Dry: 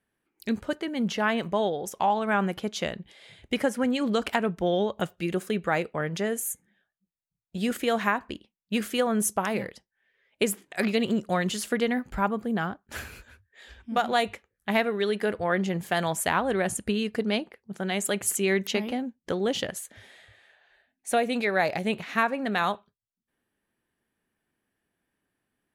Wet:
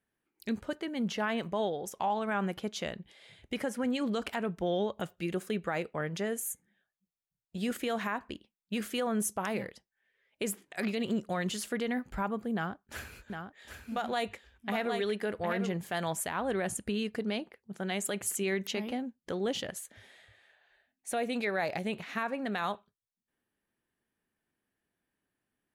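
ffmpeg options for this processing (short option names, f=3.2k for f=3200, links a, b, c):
-filter_complex "[0:a]asettb=1/sr,asplit=3[a][b][c];[a]atrim=end=12.544[d];[b]atrim=start=12.54:end=15.73,asetpts=PTS-STARTPTS,afade=t=in:d=0.004:c=qsin,afade=t=out:st=3.186:d=0.004:c=qsin,aecho=1:1:758:0.447,atrim=end_sample=140679[e];[c]atrim=start=15.726[f];[d][e]acrossfade=d=0.004:c1=hsin:c2=qsin[g];[g][f]acrossfade=d=0.004:c1=qsin:c2=hsin,alimiter=limit=-17dB:level=0:latency=1:release=39,volume=-5dB"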